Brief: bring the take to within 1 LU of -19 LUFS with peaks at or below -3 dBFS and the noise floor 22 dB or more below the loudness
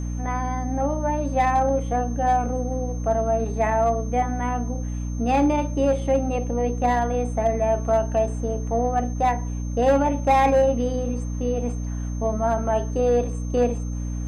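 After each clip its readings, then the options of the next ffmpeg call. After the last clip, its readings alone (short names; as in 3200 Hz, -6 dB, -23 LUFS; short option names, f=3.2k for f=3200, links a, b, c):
hum 60 Hz; harmonics up to 300 Hz; hum level -25 dBFS; steady tone 6300 Hz; tone level -45 dBFS; loudness -23.0 LUFS; peak -9.5 dBFS; loudness target -19.0 LUFS
-> -af "bandreject=f=60:t=h:w=6,bandreject=f=120:t=h:w=6,bandreject=f=180:t=h:w=6,bandreject=f=240:t=h:w=6,bandreject=f=300:t=h:w=6"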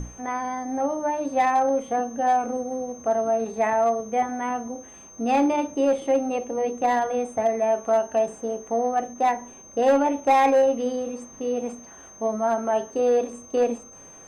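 hum none; steady tone 6300 Hz; tone level -45 dBFS
-> -af "bandreject=f=6.3k:w=30"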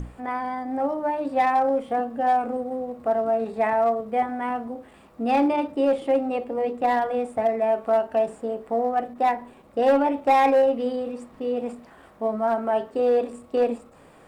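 steady tone none; loudness -24.0 LUFS; peak -11.5 dBFS; loudness target -19.0 LUFS
-> -af "volume=5dB"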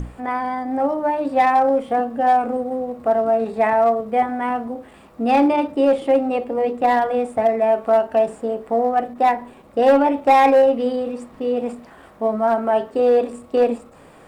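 loudness -19.0 LUFS; peak -6.5 dBFS; noise floor -46 dBFS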